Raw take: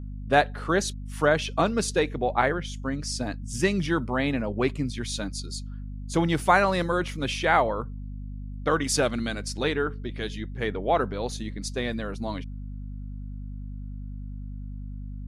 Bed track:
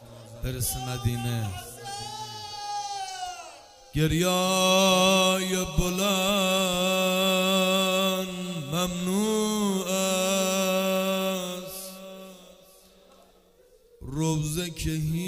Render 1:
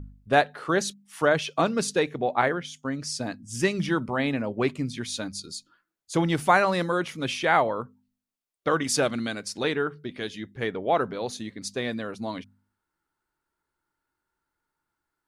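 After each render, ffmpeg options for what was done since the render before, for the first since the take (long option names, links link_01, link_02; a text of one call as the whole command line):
ffmpeg -i in.wav -af "bandreject=frequency=50:width_type=h:width=4,bandreject=frequency=100:width_type=h:width=4,bandreject=frequency=150:width_type=h:width=4,bandreject=frequency=200:width_type=h:width=4,bandreject=frequency=250:width_type=h:width=4" out.wav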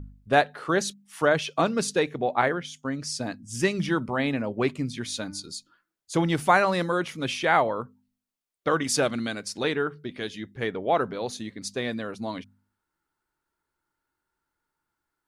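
ffmpeg -i in.wav -filter_complex "[0:a]asettb=1/sr,asplit=3[link_01][link_02][link_03];[link_01]atrim=end=4.974[link_04];[link_02]atrim=start=4.97:end=5.55,asetpts=PTS-STARTPTS,afade=type=in:duration=0.004:curve=qsin,afade=type=out:start_time=0.576:duration=0.004:curve=qsin,bandreject=frequency=296.8:width_type=h:width=4,bandreject=frequency=593.6:width_type=h:width=4,bandreject=frequency=890.4:width_type=h:width=4,bandreject=frequency=1187.2:width_type=h:width=4,bandreject=frequency=1484:width_type=h:width=4,bandreject=frequency=1780.8:width_type=h:width=4,bandreject=frequency=2077.6:width_type=h:width=4,bandreject=frequency=2374.4:width_type=h:width=4,bandreject=frequency=2671.2:width_type=h:width=4[link_05];[link_03]atrim=start=5.546[link_06];[link_04][link_05]acrossfade=duration=0.004:curve1=hsin:curve2=qsin[link_07];[link_07][link_06]acrossfade=duration=0.004:curve1=qsin:curve2=hsin" out.wav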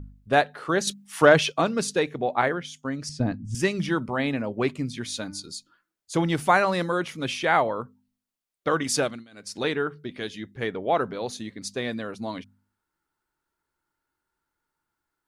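ffmpeg -i in.wav -filter_complex "[0:a]asettb=1/sr,asplit=3[link_01][link_02][link_03];[link_01]atrim=end=0.874[link_04];[link_02]atrim=start=0.87:end=1.52,asetpts=PTS-STARTPTS,afade=type=in:duration=0.004:curve=qsin,afade=type=out:start_time=0.646:duration=0.004:curve=qsin,acontrast=72[link_05];[link_03]atrim=start=1.516[link_06];[link_04][link_05]acrossfade=duration=0.004:curve1=hsin:curve2=qsin[link_07];[link_07][link_06]acrossfade=duration=0.004:curve1=qsin:curve2=hsin,asettb=1/sr,asplit=3[link_08][link_09][link_10];[link_08]atrim=end=3.094[link_11];[link_09]atrim=start=3.09:end=3.55,asetpts=PTS-STARTPTS,afade=type=in:duration=0.004:curve=qsin,afade=type=out:start_time=0.456:duration=0.004:curve=qsin,aemphasis=mode=reproduction:type=riaa[link_12];[link_10]atrim=start=3.546[link_13];[link_11][link_12]acrossfade=duration=0.004:curve1=hsin:curve2=qsin[link_14];[link_14][link_13]acrossfade=duration=0.004:curve1=qsin:curve2=hsin,asplit=3[link_15][link_16][link_17];[link_15]atrim=end=9.25,asetpts=PTS-STARTPTS,afade=type=out:start_time=8.99:duration=0.26:silence=0.0749894[link_18];[link_16]atrim=start=9.25:end=9.31,asetpts=PTS-STARTPTS,volume=-22.5dB[link_19];[link_17]atrim=start=9.31,asetpts=PTS-STARTPTS,afade=type=in:duration=0.26:silence=0.0749894[link_20];[link_18][link_19][link_20]concat=n=3:v=0:a=1" out.wav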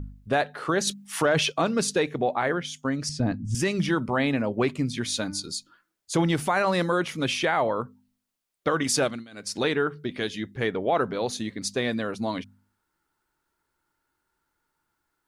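ffmpeg -i in.wav -filter_complex "[0:a]asplit=2[link_01][link_02];[link_02]acompressor=threshold=-30dB:ratio=6,volume=-3dB[link_03];[link_01][link_03]amix=inputs=2:normalize=0,alimiter=limit=-14dB:level=0:latency=1:release=29" out.wav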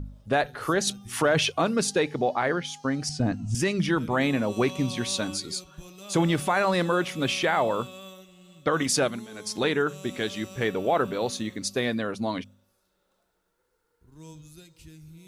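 ffmpeg -i in.wav -i bed.wav -filter_complex "[1:a]volume=-19.5dB[link_01];[0:a][link_01]amix=inputs=2:normalize=0" out.wav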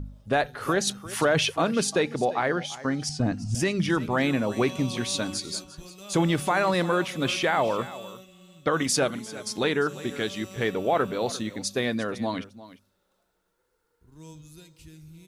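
ffmpeg -i in.wav -af "aecho=1:1:349:0.141" out.wav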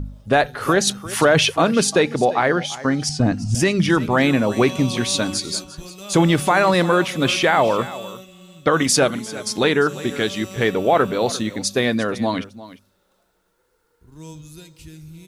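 ffmpeg -i in.wav -af "volume=7.5dB" out.wav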